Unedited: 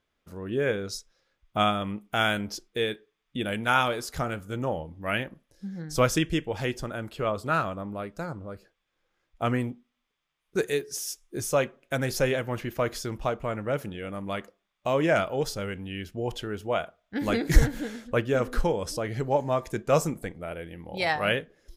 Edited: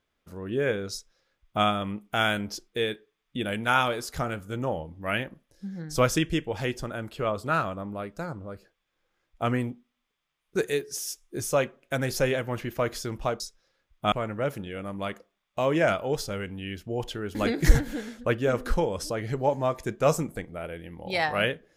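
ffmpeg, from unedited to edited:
ffmpeg -i in.wav -filter_complex "[0:a]asplit=4[link_01][link_02][link_03][link_04];[link_01]atrim=end=13.402[link_05];[link_02]atrim=start=0.918:end=1.642[link_06];[link_03]atrim=start=13.398:end=16.632[link_07];[link_04]atrim=start=17.218[link_08];[link_05][link_06]acrossfade=duration=0.004:curve1=hsin:curve2=hsin[link_09];[link_09][link_07]acrossfade=duration=0.004:curve1=hsin:curve2=hsin[link_10];[link_10][link_08]acrossfade=duration=0.004:curve1=hsin:curve2=hsin" out.wav

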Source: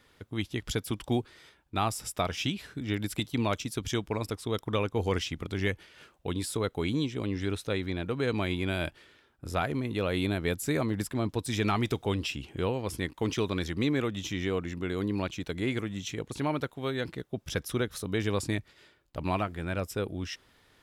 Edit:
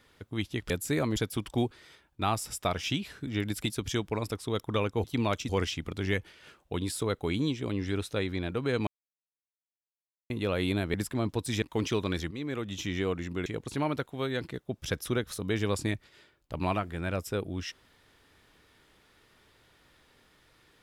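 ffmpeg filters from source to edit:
ffmpeg -i in.wav -filter_complex "[0:a]asplit=12[link_01][link_02][link_03][link_04][link_05][link_06][link_07][link_08][link_09][link_10][link_11][link_12];[link_01]atrim=end=0.702[link_13];[link_02]atrim=start=10.478:end=10.942[link_14];[link_03]atrim=start=0.698:end=3.242[link_15];[link_04]atrim=start=3.688:end=5.032[link_16];[link_05]atrim=start=3.238:end=3.692[link_17];[link_06]atrim=start=5.028:end=8.41,asetpts=PTS-STARTPTS,afade=type=out:start_time=3.378:duration=0.004:curve=hsin[link_18];[link_07]atrim=start=8.41:end=9.84,asetpts=PTS-STARTPTS,volume=0[link_19];[link_08]atrim=start=9.84:end=10.482,asetpts=PTS-STARTPTS,afade=type=in:duration=0.004:curve=hsin[link_20];[link_09]atrim=start=10.938:end=11.622[link_21];[link_10]atrim=start=13.078:end=13.77,asetpts=PTS-STARTPTS,afade=type=out:start_time=0.688:duration=0.004:curve=hsin:silence=0.199526[link_22];[link_11]atrim=start=13.77:end=14.922,asetpts=PTS-STARTPTS,afade=type=in:duration=0.53:silence=0.199526[link_23];[link_12]atrim=start=16.098[link_24];[link_13][link_14]acrossfade=duration=0.004:curve1=hsin:curve2=hsin[link_25];[link_25][link_15]acrossfade=duration=0.004:curve1=hsin:curve2=hsin[link_26];[link_26][link_16]acrossfade=duration=0.004:curve1=hsin:curve2=hsin[link_27];[link_27][link_17]acrossfade=duration=0.004:curve1=hsin:curve2=hsin[link_28];[link_18][link_19][link_20]concat=n=3:v=0:a=1[link_29];[link_28][link_29]acrossfade=duration=0.004:curve1=hsin:curve2=hsin[link_30];[link_30][link_21]acrossfade=duration=0.004:curve1=hsin:curve2=hsin[link_31];[link_22][link_23]concat=n=2:v=0:a=1[link_32];[link_31][link_32]acrossfade=duration=0.004:curve1=hsin:curve2=hsin[link_33];[link_33][link_24]acrossfade=duration=0.004:curve1=hsin:curve2=hsin" out.wav

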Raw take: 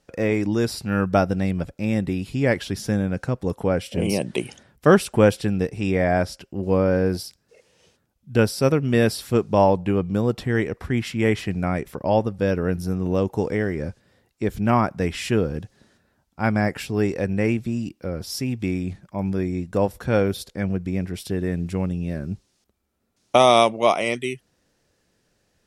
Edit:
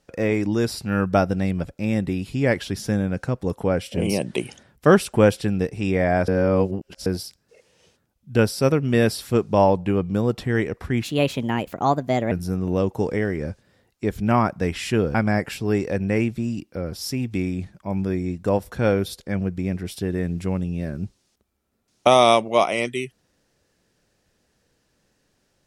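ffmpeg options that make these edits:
ffmpeg -i in.wav -filter_complex "[0:a]asplit=6[link_01][link_02][link_03][link_04][link_05][link_06];[link_01]atrim=end=6.282[link_07];[link_02]atrim=start=6.278:end=7.062,asetpts=PTS-STARTPTS,areverse[link_08];[link_03]atrim=start=7.058:end=11.034[link_09];[link_04]atrim=start=11.03:end=12.7,asetpts=PTS-STARTPTS,asetrate=57330,aresample=44100[link_10];[link_05]atrim=start=12.696:end=15.532[link_11];[link_06]atrim=start=16.428[link_12];[link_07][link_08]acrossfade=duration=0.004:curve1=hsin:curve2=hsin[link_13];[link_13][link_09]acrossfade=duration=0.004:curve1=hsin:curve2=hsin[link_14];[link_14][link_10]acrossfade=duration=0.004:curve1=hsin:curve2=hsin[link_15];[link_15][link_11]acrossfade=duration=0.004:curve1=hsin:curve2=hsin[link_16];[link_16][link_12]acrossfade=duration=0.004:curve1=hsin:curve2=hsin" out.wav

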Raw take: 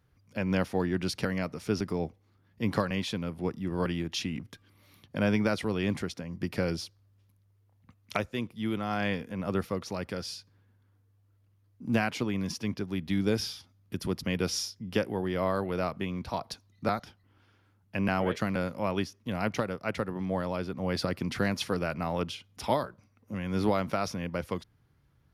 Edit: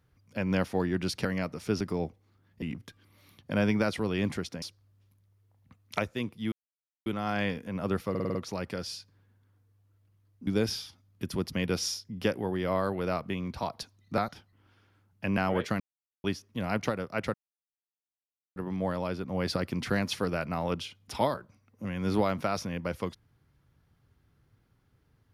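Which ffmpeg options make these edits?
ffmpeg -i in.wav -filter_complex "[0:a]asplit=13[link_01][link_02][link_03][link_04][link_05][link_06][link_07][link_08][link_09][link_10][link_11][link_12][link_13];[link_01]atrim=end=2.622[link_14];[link_02]atrim=start=4.268:end=6.272[link_15];[link_03]atrim=start=6.798:end=8.7,asetpts=PTS-STARTPTS,afade=type=out:start_time=1.898:duration=0.004:curve=hsin,apad=pad_dur=0.54[link_16];[link_04]atrim=start=8.7:end=9.792,asetpts=PTS-STARTPTS,afade=type=in:duration=0.004:curve=hsin[link_17];[link_05]atrim=start=9.738:end=9.792[link_18];[link_06]atrim=start=9.738:end=9.792[link_19];[link_07]atrim=start=9.738:end=9.792[link_20];[link_08]atrim=start=9.738:end=9.792[link_21];[link_09]atrim=start=9.738:end=11.862[link_22];[link_10]atrim=start=13.178:end=18.51,asetpts=PTS-STARTPTS,afade=type=out:start_time=5.328:duration=0.004:curve=hsin[link_23];[link_11]atrim=start=18.51:end=18.95,asetpts=PTS-STARTPTS,volume=0[link_24];[link_12]atrim=start=18.95:end=20.05,asetpts=PTS-STARTPTS,afade=type=in:duration=0.004:curve=hsin,afade=type=out:start_time=1.096:duration=0.004:curve=hsin,apad=pad_dur=1.22[link_25];[link_13]atrim=start=20.05,asetpts=PTS-STARTPTS,afade=type=in:duration=0.004:curve=hsin[link_26];[link_14][link_15]acrossfade=duration=0.004:curve1=hsin:curve2=hsin[link_27];[link_16][link_17]concat=n=2:v=0:a=1[link_28];[link_27][link_28]acrossfade=duration=0.004:curve1=hsin:curve2=hsin[link_29];[link_29][link_18]acrossfade=duration=0.004:curve1=hsin:curve2=hsin[link_30];[link_30][link_19]acrossfade=duration=0.004:curve1=hsin:curve2=hsin[link_31];[link_31][link_20]acrossfade=duration=0.004:curve1=hsin:curve2=hsin[link_32];[link_32][link_21]acrossfade=duration=0.004:curve1=hsin:curve2=hsin[link_33];[link_33][link_22]acrossfade=duration=0.004:curve1=hsin:curve2=hsin[link_34];[link_23][link_24][link_25][link_26]concat=n=4:v=0:a=1[link_35];[link_34][link_35]acrossfade=duration=0.004:curve1=hsin:curve2=hsin" out.wav

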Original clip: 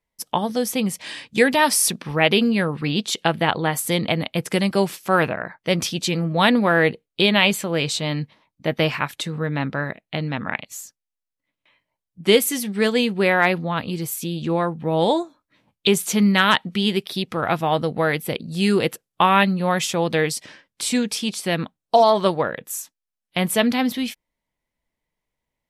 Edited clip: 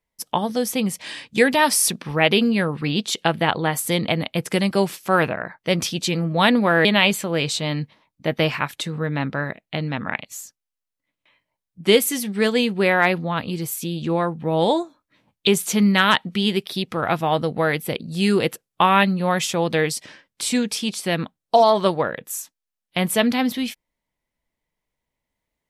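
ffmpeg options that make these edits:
ffmpeg -i in.wav -filter_complex "[0:a]asplit=2[link_01][link_02];[link_01]atrim=end=6.852[link_03];[link_02]atrim=start=7.248[link_04];[link_03][link_04]acrossfade=duration=0.004:curve1=hsin:curve2=hsin" out.wav

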